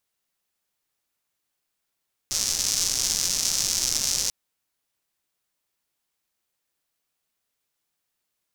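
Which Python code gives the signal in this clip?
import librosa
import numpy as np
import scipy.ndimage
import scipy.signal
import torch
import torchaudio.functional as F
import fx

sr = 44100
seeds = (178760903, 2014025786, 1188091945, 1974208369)

y = fx.rain(sr, seeds[0], length_s=1.99, drops_per_s=270.0, hz=5800.0, bed_db=-14.5)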